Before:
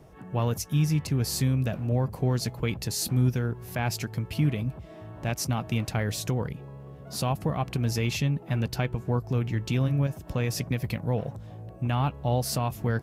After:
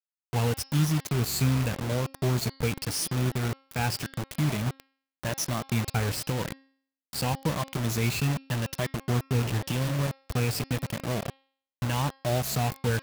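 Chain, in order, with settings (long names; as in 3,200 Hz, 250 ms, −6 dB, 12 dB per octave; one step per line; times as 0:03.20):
rippled gain that drifts along the octave scale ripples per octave 1.2, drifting +0.89 Hz, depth 12 dB
bit reduction 5 bits
hum removal 269 Hz, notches 20
level −2.5 dB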